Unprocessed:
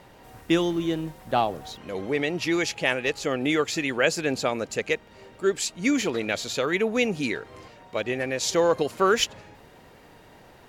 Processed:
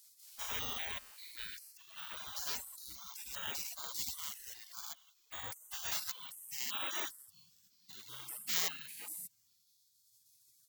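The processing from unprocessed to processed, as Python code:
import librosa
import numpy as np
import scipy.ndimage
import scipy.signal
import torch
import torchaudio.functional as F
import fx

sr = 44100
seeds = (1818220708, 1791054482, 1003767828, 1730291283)

y = fx.spec_steps(x, sr, hold_ms=200)
y = fx.filter_sweep_highpass(y, sr, from_hz=75.0, to_hz=640.0, start_s=5.78, end_s=7.17, q=1.5)
y = fx.spec_gate(y, sr, threshold_db=-30, keep='weak')
y = fx.dereverb_blind(y, sr, rt60_s=2.0)
y = (np.kron(y[::2], np.eye(2)[0]) * 2)[:len(y)]
y = y * 10.0 ** (5.5 / 20.0)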